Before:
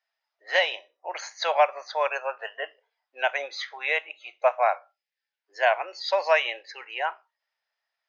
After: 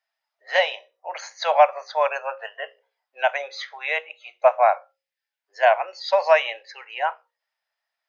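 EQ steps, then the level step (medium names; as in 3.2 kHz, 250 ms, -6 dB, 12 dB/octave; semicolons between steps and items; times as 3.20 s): resonant low shelf 430 Hz -7 dB, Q 1.5; hum notches 60/120/180/240/300/360/420/480/540 Hz; dynamic bell 720 Hz, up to +4 dB, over -28 dBFS, Q 0.77; 0.0 dB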